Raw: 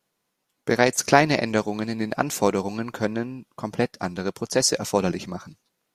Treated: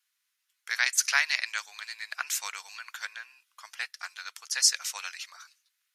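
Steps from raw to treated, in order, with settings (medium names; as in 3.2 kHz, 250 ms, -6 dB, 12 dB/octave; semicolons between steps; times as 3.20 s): high-pass 1.5 kHz 24 dB/octave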